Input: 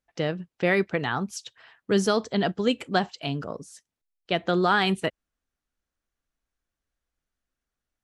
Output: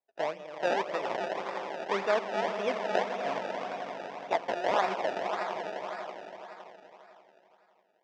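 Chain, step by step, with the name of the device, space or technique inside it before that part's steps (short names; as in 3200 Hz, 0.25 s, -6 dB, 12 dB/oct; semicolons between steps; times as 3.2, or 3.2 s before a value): 4.32–4.72 tilt +4.5 dB/oct; swelling echo 85 ms, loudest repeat 5, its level -12 dB; circuit-bent sampling toy (decimation with a swept rate 28×, swing 100% 1.8 Hz; speaker cabinet 530–4700 Hz, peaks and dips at 640 Hz +7 dB, 930 Hz +4 dB, 1400 Hz -3 dB, 3000 Hz -3 dB, 4200 Hz -9 dB); gain -4 dB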